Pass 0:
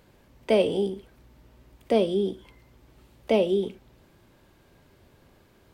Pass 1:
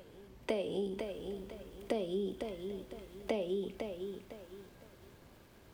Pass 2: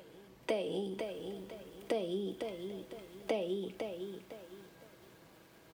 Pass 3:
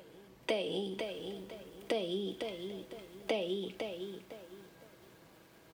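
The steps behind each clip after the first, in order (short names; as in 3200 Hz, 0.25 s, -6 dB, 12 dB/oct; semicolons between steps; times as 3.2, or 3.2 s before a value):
compressor 10:1, threshold -30 dBFS, peak gain reduction 14.5 dB; reverse echo 0.595 s -20.5 dB; lo-fi delay 0.505 s, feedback 35%, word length 10-bit, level -6 dB; gain -1.5 dB
HPF 190 Hz 6 dB/oct; comb 6.2 ms, depth 36%; gain +1 dB
dynamic EQ 3400 Hz, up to +7 dB, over -60 dBFS, Q 0.94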